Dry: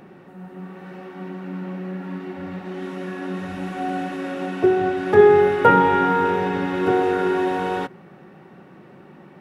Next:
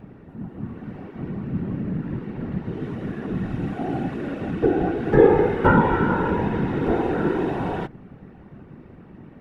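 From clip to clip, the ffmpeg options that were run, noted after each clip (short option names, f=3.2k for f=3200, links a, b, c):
-af "bass=f=250:g=13,treble=f=4k:g=-6,afftfilt=real='hypot(re,im)*cos(2*PI*random(0))':imag='hypot(re,im)*sin(2*PI*random(1))':win_size=512:overlap=0.75,volume=1dB"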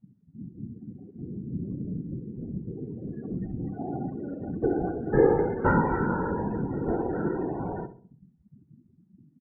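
-filter_complex "[0:a]afftdn=nr=35:nf=-29,asplit=2[a][b];[b]adelay=66,lowpass=f=1.1k:p=1,volume=-11dB,asplit=2[c][d];[d]adelay=66,lowpass=f=1.1k:p=1,volume=0.45,asplit=2[e][f];[f]adelay=66,lowpass=f=1.1k:p=1,volume=0.45,asplit=2[g][h];[h]adelay=66,lowpass=f=1.1k:p=1,volume=0.45,asplit=2[i][j];[j]adelay=66,lowpass=f=1.1k:p=1,volume=0.45[k];[c][e][g][i][k]amix=inputs=5:normalize=0[l];[a][l]amix=inputs=2:normalize=0,volume=-6.5dB"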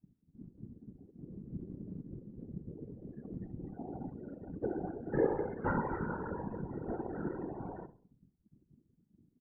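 -af "afftfilt=real='hypot(re,im)*cos(2*PI*random(0))':imag='hypot(re,im)*sin(2*PI*random(1))':win_size=512:overlap=0.75,volume=-6.5dB"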